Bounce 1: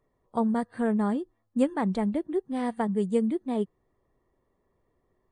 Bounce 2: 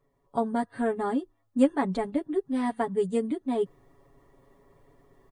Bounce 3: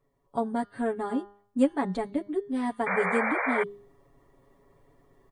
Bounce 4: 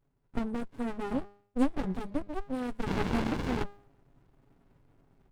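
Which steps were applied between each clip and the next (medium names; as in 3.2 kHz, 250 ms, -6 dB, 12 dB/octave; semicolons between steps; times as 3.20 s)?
reverse; upward compressor, threshold -48 dBFS; reverse; comb 7.2 ms, depth 98%; trim -1.5 dB
de-hum 202.9 Hz, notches 33; painted sound noise, 2.86–3.64 s, 440–2400 Hz -27 dBFS; trim -1.5 dB
sliding maximum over 65 samples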